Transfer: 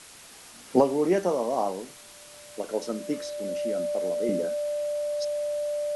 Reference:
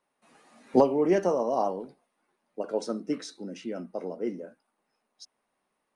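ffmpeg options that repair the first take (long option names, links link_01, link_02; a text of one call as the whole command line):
ffmpeg -i in.wav -af "bandreject=frequency=590:width=30,afwtdn=0.005,asetnsamples=nb_out_samples=441:pad=0,asendcmd='4.29 volume volume -9dB',volume=0dB" out.wav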